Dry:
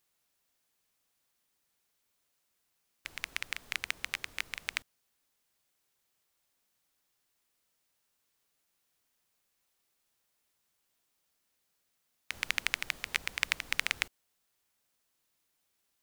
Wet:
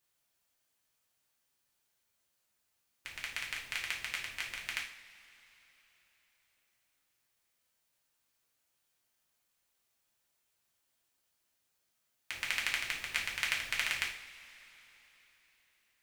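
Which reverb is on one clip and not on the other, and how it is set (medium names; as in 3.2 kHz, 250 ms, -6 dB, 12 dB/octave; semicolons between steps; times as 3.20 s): two-slope reverb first 0.47 s, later 4 s, from -21 dB, DRR -3 dB; trim -5.5 dB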